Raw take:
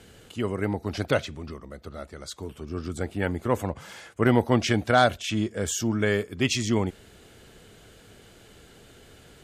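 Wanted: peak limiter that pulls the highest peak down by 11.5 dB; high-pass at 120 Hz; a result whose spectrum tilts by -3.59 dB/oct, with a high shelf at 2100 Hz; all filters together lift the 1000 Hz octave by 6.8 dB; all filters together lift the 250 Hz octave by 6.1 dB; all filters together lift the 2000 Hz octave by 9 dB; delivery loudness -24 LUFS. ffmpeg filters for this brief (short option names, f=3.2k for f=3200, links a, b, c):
-af "highpass=120,equalizer=f=250:t=o:g=7,equalizer=f=1k:t=o:g=6,equalizer=f=2k:t=o:g=5.5,highshelf=f=2.1k:g=7.5,volume=0.5dB,alimiter=limit=-10.5dB:level=0:latency=1"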